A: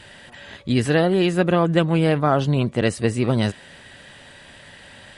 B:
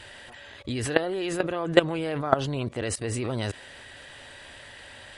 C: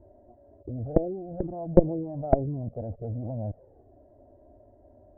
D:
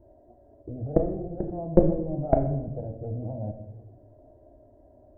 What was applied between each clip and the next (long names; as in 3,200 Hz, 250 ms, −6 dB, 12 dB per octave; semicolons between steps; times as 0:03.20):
parametric band 180 Hz −13 dB 0.67 octaves; output level in coarse steps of 17 dB; level +5 dB
harmonic generator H 4 −8 dB, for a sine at −1 dBFS; Chebyshev low-pass filter 670 Hz, order 4; flanger swept by the level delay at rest 3.2 ms, full sweep at −18.5 dBFS; level +1.5 dB
rectangular room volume 270 cubic metres, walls mixed, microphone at 0.62 metres; level −1 dB